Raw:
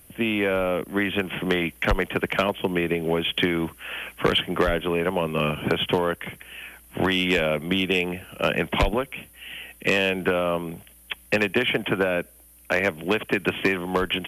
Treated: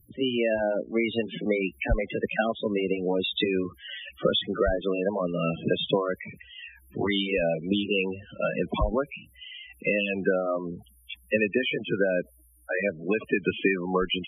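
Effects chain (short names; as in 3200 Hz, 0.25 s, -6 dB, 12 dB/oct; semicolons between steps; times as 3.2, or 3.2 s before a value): gliding pitch shift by +2.5 st ending unshifted; loudest bins only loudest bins 16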